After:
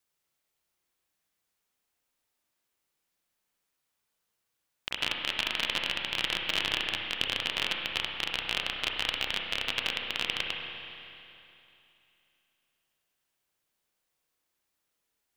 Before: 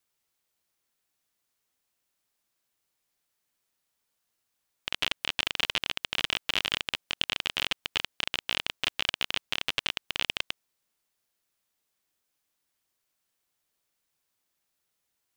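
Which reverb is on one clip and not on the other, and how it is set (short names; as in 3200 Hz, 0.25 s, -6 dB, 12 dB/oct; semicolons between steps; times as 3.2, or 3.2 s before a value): spring tank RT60 2.9 s, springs 31/60 ms, chirp 80 ms, DRR 1 dB; gain -2 dB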